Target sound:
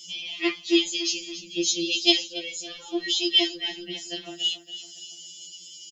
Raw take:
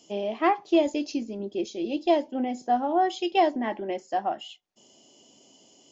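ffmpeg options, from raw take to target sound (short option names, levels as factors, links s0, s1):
-filter_complex "[0:a]firequalizer=gain_entry='entry(120,0);entry(820,-20);entry(2900,15)':delay=0.05:min_phase=1,aecho=1:1:280|560|840|1120:0.224|0.101|0.0453|0.0204,asettb=1/sr,asplit=3[s0][s1][s2];[s0]atrim=end=1.444[s3];[s1]atrim=start=1.44:end=2.33,asetpts=PTS-STARTPTS,afade=t=in:d=0.004:c=qsin,afade=t=out:st=0.886:d=0.004:c=qsin,adynamicequalizer=threshold=0.00794:dfrequency=6200:dqfactor=0.99:tfrequency=6200:tqfactor=0.99:attack=5:release=100:ratio=0.375:range=4:mode=boostabove:tftype=bell[s4];[s2]atrim=start=2.326[s5];[s3][s4]acrossfade=d=0.004:c1=hsin:c2=qsin[s6];[s6][s5]acrossfade=d=0.004:c1=qsin:c2=hsin,afftfilt=real='re*2.83*eq(mod(b,8),0)':imag='im*2.83*eq(mod(b,8),0)':win_size=2048:overlap=0.75,volume=1.41"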